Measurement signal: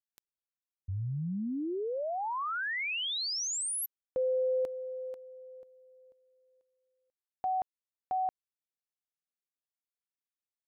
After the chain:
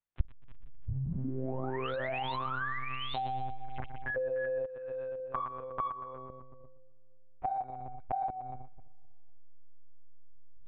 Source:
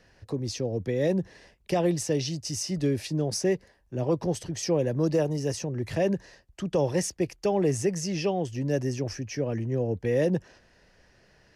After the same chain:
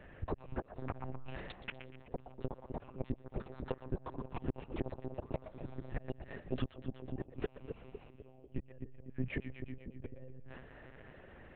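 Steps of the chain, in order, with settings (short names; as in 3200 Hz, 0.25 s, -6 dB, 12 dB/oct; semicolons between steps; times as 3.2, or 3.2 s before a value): tracing distortion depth 0.044 ms; flipped gate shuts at -23 dBFS, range -39 dB; in parallel at -3 dB: backlash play -42 dBFS; on the sum: echoes that change speed 0.38 s, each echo +7 st, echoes 2; air absorption 420 m; on a send: split-band echo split 520 Hz, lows 0.251 s, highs 0.123 s, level -12.5 dB; on the sum: compressor 5:1, threshold -40 dBFS; monotone LPC vocoder at 8 kHz 130 Hz; gain +6.5 dB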